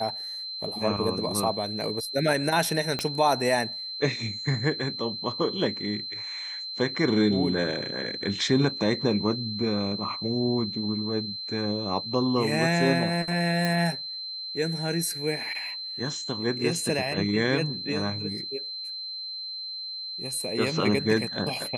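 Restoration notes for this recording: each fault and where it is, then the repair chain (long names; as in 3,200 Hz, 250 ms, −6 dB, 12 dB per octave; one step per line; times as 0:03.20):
whistle 4,100 Hz −33 dBFS
0:02.99: click −14 dBFS
0:13.65: click −13 dBFS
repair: click removal
notch filter 4,100 Hz, Q 30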